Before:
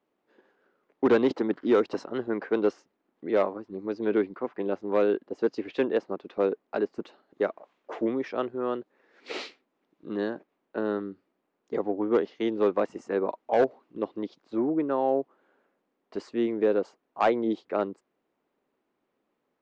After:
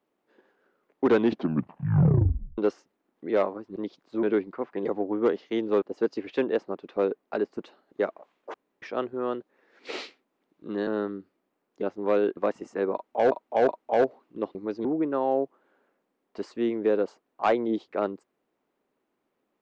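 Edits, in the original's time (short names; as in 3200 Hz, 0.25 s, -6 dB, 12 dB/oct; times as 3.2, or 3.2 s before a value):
1.1 tape stop 1.48 s
3.76–4.06 swap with 14.15–14.62
4.68–5.23 swap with 11.74–12.71
7.95–8.23 room tone
10.28–10.79 cut
13.28–13.65 loop, 3 plays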